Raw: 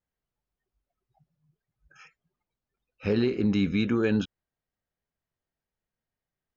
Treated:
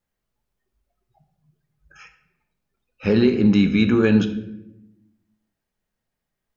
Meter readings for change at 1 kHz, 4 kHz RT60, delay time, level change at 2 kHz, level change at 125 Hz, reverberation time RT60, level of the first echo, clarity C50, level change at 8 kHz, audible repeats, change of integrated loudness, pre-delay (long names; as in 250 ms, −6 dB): +7.0 dB, 0.60 s, no echo audible, +7.5 dB, +8.0 dB, 0.85 s, no echo audible, 11.5 dB, can't be measured, no echo audible, +8.0 dB, 4 ms